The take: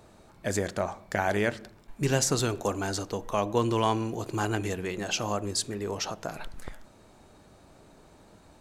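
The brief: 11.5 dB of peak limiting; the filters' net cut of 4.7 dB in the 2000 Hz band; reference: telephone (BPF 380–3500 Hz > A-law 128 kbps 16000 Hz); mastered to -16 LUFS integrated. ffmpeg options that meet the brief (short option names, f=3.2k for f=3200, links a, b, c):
-af "equalizer=f=2k:t=o:g=-6,alimiter=limit=-23.5dB:level=0:latency=1,highpass=380,lowpass=3.5k,volume=22.5dB" -ar 16000 -c:a pcm_alaw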